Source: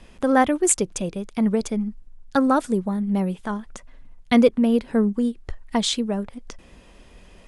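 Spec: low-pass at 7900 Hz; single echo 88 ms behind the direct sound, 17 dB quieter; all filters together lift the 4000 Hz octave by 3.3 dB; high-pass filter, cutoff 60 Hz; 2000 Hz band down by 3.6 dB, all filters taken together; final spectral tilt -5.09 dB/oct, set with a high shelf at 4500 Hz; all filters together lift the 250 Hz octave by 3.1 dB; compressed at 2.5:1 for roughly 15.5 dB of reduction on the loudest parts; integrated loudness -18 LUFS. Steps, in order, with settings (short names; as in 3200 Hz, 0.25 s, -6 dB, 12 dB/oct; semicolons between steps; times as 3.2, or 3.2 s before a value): HPF 60 Hz; LPF 7900 Hz; bell 250 Hz +3.5 dB; bell 2000 Hz -5.5 dB; bell 4000 Hz +7 dB; high shelf 4500 Hz -3 dB; compressor 2.5:1, threshold -33 dBFS; echo 88 ms -17 dB; gain +14 dB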